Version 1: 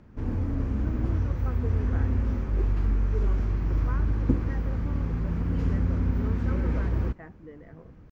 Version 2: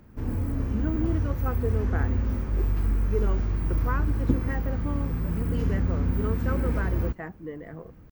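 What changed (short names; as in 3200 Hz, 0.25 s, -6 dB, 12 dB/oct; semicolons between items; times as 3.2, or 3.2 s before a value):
speech +8.5 dB; master: remove air absorption 63 m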